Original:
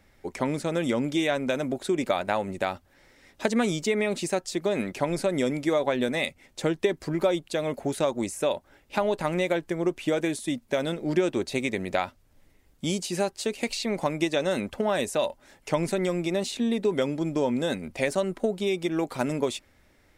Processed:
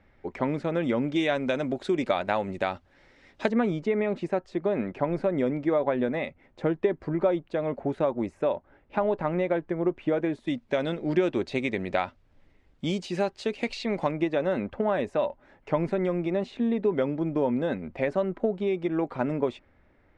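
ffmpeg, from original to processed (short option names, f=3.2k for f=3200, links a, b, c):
-af "asetnsamples=n=441:p=0,asendcmd='1.16 lowpass f 4200;3.49 lowpass f 1600;10.47 lowpass f 3400;14.11 lowpass f 1800',lowpass=2.4k"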